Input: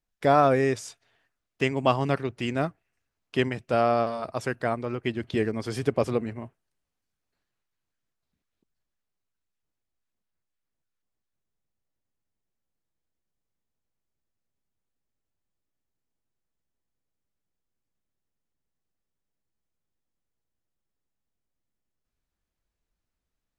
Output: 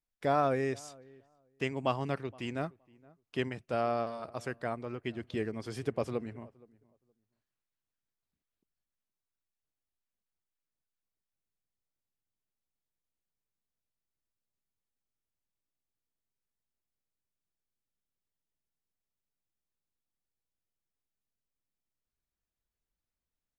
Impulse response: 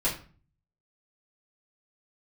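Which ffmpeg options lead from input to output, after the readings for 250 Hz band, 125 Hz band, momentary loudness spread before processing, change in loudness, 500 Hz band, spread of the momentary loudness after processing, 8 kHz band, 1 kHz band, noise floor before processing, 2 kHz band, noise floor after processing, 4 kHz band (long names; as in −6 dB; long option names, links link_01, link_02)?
−8.5 dB, −8.5 dB, 11 LU, −8.5 dB, −8.5 dB, 11 LU, −8.5 dB, −8.5 dB, −84 dBFS, −8.5 dB, below −85 dBFS, −8.5 dB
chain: -filter_complex "[0:a]asplit=2[link_01][link_02];[link_02]adelay=469,lowpass=frequency=1200:poles=1,volume=-23.5dB,asplit=2[link_03][link_04];[link_04]adelay=469,lowpass=frequency=1200:poles=1,volume=0.17[link_05];[link_01][link_03][link_05]amix=inputs=3:normalize=0,volume=-8.5dB"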